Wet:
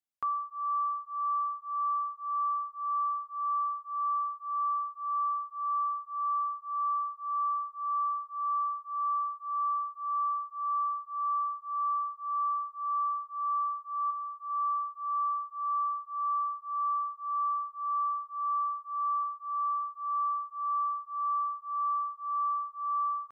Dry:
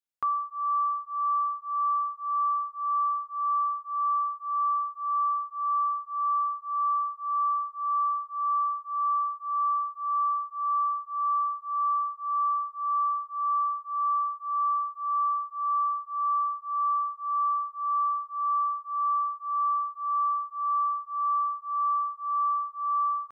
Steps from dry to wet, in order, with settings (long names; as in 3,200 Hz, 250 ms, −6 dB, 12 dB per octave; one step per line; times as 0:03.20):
0:14.10–0:14.50: downward compressor, threshold −31 dBFS, peak gain reduction 6.5 dB
0:19.23–0:19.83: spectral tilt −2.5 dB per octave
level −4 dB